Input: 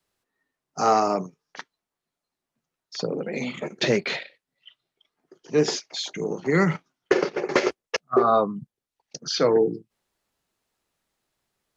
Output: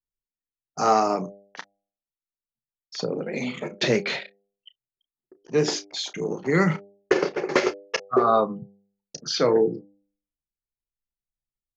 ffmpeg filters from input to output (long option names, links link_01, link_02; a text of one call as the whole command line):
ffmpeg -i in.wav -filter_complex "[0:a]anlmdn=0.0251,asplit=2[link_01][link_02];[link_02]adelay=32,volume=-13.5dB[link_03];[link_01][link_03]amix=inputs=2:normalize=0,bandreject=frequency=99.89:width_type=h:width=4,bandreject=frequency=199.78:width_type=h:width=4,bandreject=frequency=299.67:width_type=h:width=4,bandreject=frequency=399.56:width_type=h:width=4,bandreject=frequency=499.45:width_type=h:width=4,bandreject=frequency=599.34:width_type=h:width=4,bandreject=frequency=699.23:width_type=h:width=4,bandreject=frequency=799.12:width_type=h:width=4" out.wav